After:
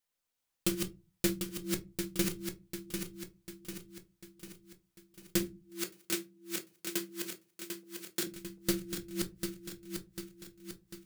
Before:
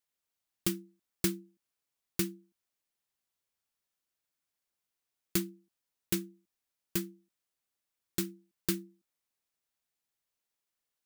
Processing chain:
feedback delay that plays each chunk backwards 373 ms, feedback 72%, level −4 dB
0:05.43–0:08.27: high-pass filter 360 Hz 12 dB per octave
convolution reverb RT60 0.25 s, pre-delay 4 ms, DRR 4.5 dB
highs frequency-modulated by the lows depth 0.21 ms

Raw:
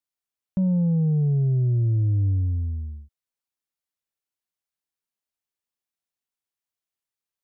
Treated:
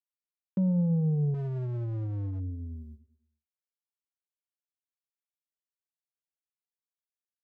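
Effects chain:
in parallel at −3 dB: brickwall limiter −27.5 dBFS, peak gain reduction 9 dB
on the sum: noise gate with hold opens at −23 dBFS
high-pass filter 160 Hz 12 dB per octave
repeating echo 107 ms, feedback 51%, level −19 dB
0:01.34–0:02.40: hard clipping −27 dBFS, distortion −13 dB
level −4 dB

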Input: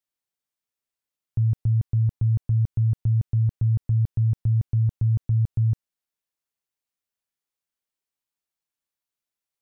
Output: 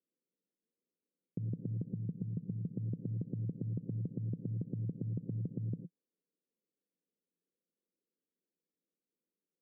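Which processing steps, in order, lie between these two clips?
0:01.92–0:02.76: output level in coarse steps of 22 dB
elliptic band-pass filter 170–500 Hz, stop band 40 dB
reverb whose tail is shaped and stops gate 130 ms rising, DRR 12 dB
brickwall limiter −37.5 dBFS, peak gain reduction 7.5 dB
level +10 dB

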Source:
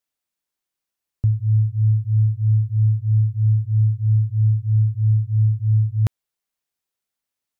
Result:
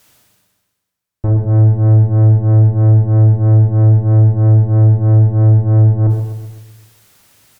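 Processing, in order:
parametric band 110 Hz +10 dB 1.5 octaves
reversed playback
upward compression, threshold −26 dBFS
reversed playback
tube saturation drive 17 dB, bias 0.7
repeating echo 128 ms, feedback 52%, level −8.5 dB
on a send at −3 dB: convolution reverb RT60 0.80 s, pre-delay 23 ms
on the sum: level +4 dB

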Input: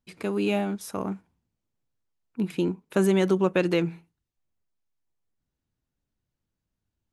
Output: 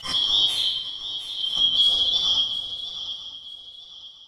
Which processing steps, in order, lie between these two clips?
band-splitting scrambler in four parts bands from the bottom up 3412
transient designer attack +6 dB, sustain 0 dB
time stretch by phase vocoder 0.6×
reversed playback
downward compressor, threshold −35 dBFS, peak gain reduction 18 dB
reversed playback
low-pass filter 10,000 Hz 12 dB per octave
on a send: feedback echo with a long and a short gap by turns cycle 951 ms, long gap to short 3 to 1, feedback 31%, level −12 dB
on the sum: rectangular room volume 600 cubic metres, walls mixed, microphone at 7 metres
background raised ahead of every attack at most 100 dB per second
level +4 dB

